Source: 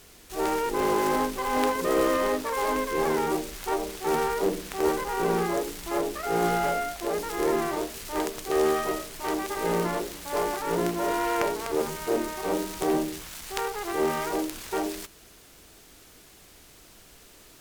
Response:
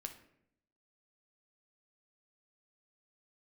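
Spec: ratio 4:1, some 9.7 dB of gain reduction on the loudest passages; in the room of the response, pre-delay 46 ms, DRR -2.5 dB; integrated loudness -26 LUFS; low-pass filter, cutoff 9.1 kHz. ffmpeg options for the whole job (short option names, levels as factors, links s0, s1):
-filter_complex "[0:a]lowpass=9100,acompressor=threshold=0.0251:ratio=4,asplit=2[s0][s1];[1:a]atrim=start_sample=2205,adelay=46[s2];[s1][s2]afir=irnorm=-1:irlink=0,volume=2[s3];[s0][s3]amix=inputs=2:normalize=0,volume=1.58"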